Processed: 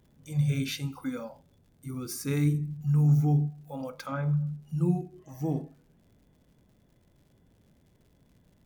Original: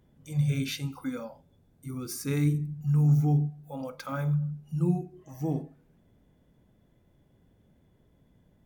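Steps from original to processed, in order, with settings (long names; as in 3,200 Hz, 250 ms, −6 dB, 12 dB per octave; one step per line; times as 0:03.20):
0:04.04–0:04.51: treble cut that deepens with the level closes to 2,300 Hz, closed at −27 dBFS
surface crackle 130 per second −56 dBFS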